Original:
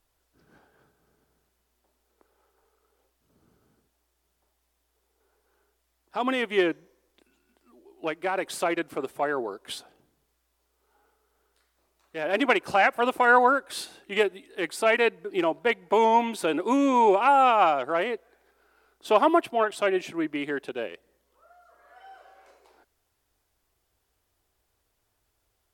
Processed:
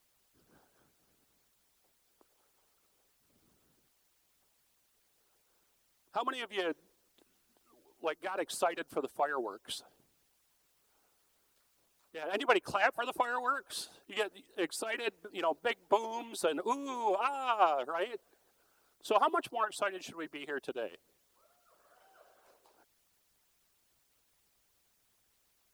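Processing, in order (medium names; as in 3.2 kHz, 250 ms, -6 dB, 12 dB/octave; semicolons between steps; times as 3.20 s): peaking EQ 2.1 kHz -8.5 dB 0.53 oct; added noise white -67 dBFS; harmonic-percussive split harmonic -17 dB; trim -2.5 dB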